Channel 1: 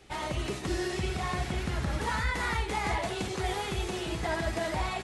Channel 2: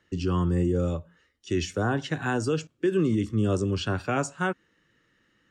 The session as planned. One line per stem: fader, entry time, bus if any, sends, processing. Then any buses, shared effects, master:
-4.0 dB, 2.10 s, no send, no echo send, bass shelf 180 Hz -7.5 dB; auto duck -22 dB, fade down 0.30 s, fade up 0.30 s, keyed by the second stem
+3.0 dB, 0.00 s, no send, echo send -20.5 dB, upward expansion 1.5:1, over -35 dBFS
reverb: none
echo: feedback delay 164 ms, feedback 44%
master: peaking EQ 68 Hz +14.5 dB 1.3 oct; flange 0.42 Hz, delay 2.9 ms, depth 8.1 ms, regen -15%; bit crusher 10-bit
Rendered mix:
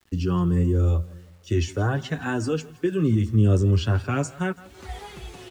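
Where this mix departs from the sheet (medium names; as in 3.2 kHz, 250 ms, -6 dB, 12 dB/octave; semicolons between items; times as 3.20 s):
stem 1: entry 2.10 s -> 1.45 s; stem 2: missing upward expansion 1.5:1, over -35 dBFS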